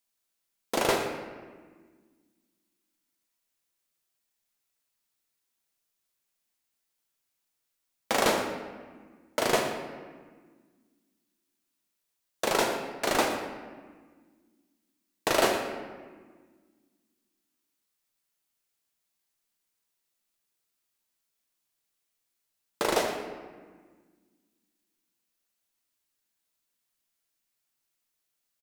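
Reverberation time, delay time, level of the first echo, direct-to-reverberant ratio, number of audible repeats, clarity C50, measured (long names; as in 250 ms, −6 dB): 1.6 s, 118 ms, −14.0 dB, 2.5 dB, 1, 5.0 dB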